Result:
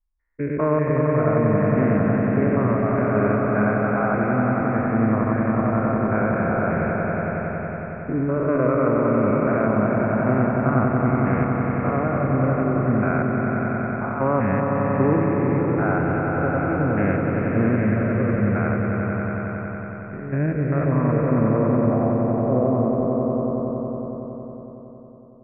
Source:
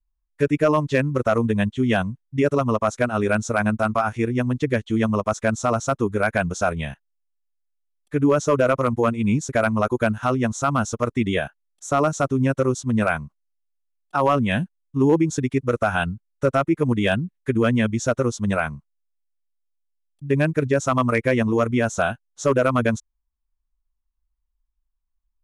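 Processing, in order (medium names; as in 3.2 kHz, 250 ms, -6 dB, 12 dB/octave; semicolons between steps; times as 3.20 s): spectrogram pixelated in time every 200 ms; steep low-pass 2.3 kHz 72 dB/octave, from 20.84 s 1.1 kHz; echo with a slow build-up 92 ms, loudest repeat 5, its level -6.5 dB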